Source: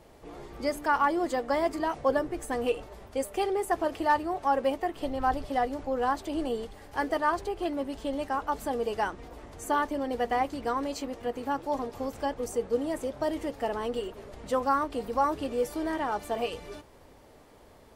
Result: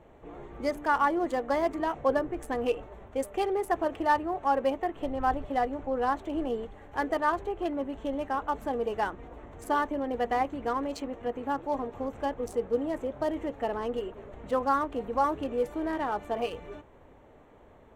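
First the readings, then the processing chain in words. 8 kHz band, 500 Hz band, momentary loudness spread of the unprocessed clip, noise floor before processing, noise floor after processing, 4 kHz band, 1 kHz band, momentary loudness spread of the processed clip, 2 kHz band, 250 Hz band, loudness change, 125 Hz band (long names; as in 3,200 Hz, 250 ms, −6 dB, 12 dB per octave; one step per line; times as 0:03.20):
−7.0 dB, 0.0 dB, 8 LU, −55 dBFS, −55 dBFS, −3.5 dB, 0.0 dB, 8 LU, −0.5 dB, 0.0 dB, 0.0 dB, 0.0 dB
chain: adaptive Wiener filter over 9 samples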